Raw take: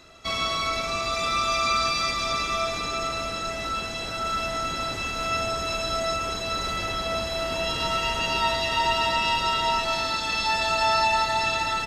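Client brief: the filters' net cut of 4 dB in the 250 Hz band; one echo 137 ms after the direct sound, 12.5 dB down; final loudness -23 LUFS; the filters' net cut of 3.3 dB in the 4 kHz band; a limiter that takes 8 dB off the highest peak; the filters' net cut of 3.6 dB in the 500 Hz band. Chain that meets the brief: peaking EQ 250 Hz -4 dB; peaking EQ 500 Hz -5 dB; peaking EQ 4 kHz -4 dB; peak limiter -21 dBFS; delay 137 ms -12.5 dB; trim +6 dB

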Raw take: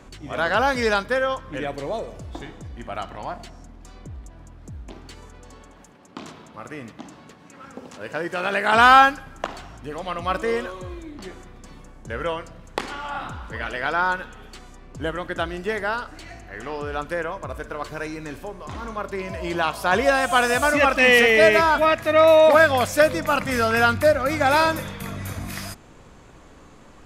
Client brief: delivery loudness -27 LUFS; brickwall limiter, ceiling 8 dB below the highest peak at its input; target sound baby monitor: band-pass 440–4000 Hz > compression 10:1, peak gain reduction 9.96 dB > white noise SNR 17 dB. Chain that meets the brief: peak limiter -10.5 dBFS; band-pass 440–4000 Hz; compression 10:1, threshold -24 dBFS; white noise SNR 17 dB; trim +3.5 dB

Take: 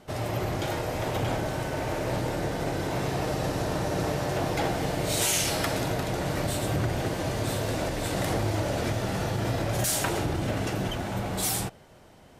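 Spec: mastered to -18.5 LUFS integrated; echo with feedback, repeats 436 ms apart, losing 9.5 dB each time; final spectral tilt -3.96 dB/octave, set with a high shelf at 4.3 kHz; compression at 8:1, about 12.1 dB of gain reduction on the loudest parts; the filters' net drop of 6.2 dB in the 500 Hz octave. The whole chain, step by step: peaking EQ 500 Hz -8.5 dB; treble shelf 4.3 kHz +6.5 dB; compression 8:1, threshold -31 dBFS; feedback delay 436 ms, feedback 33%, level -9.5 dB; trim +15.5 dB

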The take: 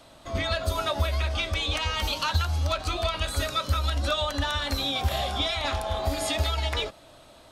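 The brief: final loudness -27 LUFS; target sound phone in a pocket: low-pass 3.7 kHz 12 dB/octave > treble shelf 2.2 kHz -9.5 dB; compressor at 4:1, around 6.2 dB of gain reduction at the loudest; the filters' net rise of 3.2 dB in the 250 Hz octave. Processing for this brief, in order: peaking EQ 250 Hz +4 dB; compression 4:1, threshold -27 dBFS; low-pass 3.7 kHz 12 dB/octave; treble shelf 2.2 kHz -9.5 dB; trim +6.5 dB

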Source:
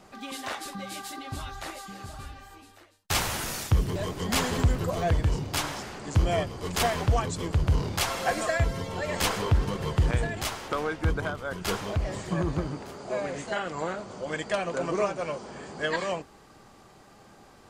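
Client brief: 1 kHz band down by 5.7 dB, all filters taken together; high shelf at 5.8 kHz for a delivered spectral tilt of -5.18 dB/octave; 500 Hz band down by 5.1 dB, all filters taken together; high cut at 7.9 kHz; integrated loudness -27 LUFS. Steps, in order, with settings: low-pass 7.9 kHz; peaking EQ 500 Hz -4.5 dB; peaking EQ 1 kHz -6 dB; treble shelf 5.8 kHz -5 dB; trim +4 dB

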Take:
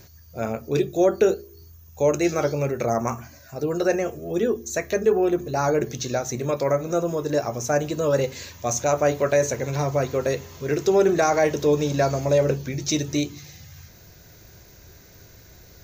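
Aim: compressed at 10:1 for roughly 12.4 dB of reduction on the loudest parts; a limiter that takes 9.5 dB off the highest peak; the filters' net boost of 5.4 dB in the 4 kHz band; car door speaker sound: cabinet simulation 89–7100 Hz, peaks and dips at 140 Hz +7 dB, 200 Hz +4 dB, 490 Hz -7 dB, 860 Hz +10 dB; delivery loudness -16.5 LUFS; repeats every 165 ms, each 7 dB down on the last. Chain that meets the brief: peaking EQ 4 kHz +6.5 dB; compression 10:1, threshold -26 dBFS; peak limiter -23.5 dBFS; cabinet simulation 89–7100 Hz, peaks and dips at 140 Hz +7 dB, 200 Hz +4 dB, 490 Hz -7 dB, 860 Hz +10 dB; feedback delay 165 ms, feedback 45%, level -7 dB; trim +15.5 dB

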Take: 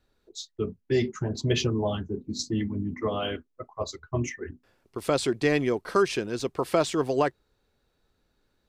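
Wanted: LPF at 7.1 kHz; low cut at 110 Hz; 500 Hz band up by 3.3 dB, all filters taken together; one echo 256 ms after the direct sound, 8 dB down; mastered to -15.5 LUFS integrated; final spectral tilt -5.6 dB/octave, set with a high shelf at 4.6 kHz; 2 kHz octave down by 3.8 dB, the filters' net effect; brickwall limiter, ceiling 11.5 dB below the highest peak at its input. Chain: high-pass 110 Hz; low-pass 7.1 kHz; peaking EQ 500 Hz +4.5 dB; peaking EQ 2 kHz -4 dB; treble shelf 4.6 kHz -5.5 dB; peak limiter -20 dBFS; delay 256 ms -8 dB; trim +15 dB

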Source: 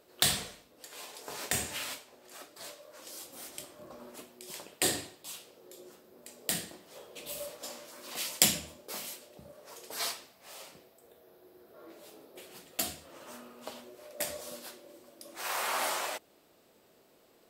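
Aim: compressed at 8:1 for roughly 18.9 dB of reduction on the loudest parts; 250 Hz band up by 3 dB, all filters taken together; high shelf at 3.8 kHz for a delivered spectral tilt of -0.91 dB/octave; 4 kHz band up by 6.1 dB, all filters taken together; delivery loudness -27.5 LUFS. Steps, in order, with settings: peaking EQ 250 Hz +4 dB; treble shelf 3.8 kHz +7 dB; peaking EQ 4 kHz +3 dB; compression 8:1, threshold -37 dBFS; trim +14 dB

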